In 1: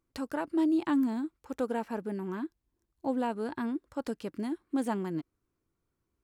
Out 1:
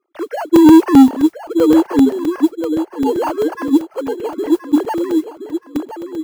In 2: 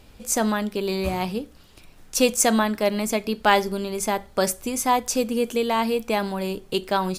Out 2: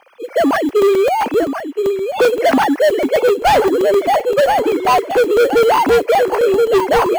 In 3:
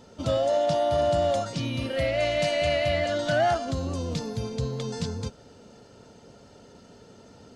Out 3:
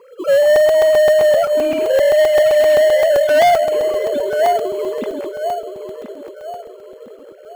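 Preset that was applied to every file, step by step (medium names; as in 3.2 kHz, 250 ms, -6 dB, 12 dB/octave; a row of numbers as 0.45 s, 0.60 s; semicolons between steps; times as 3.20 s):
formants replaced by sine waves; high-pass 250 Hz 12 dB/octave; treble shelf 2.6 kHz -9 dB; modulation noise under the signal 31 dB; on a send: filtered feedback delay 1022 ms, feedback 37%, low-pass 2.2 kHz, level -9 dB; on the sum: saturation -26 dBFS; in parallel at -10.5 dB: sample-and-hold 12×; on the sum: crackling interface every 0.13 s, samples 128, zero, from 0.56 s; normalise loudness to -14 LUFS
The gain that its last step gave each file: +22.0 dB, +15.5 dB, +15.5 dB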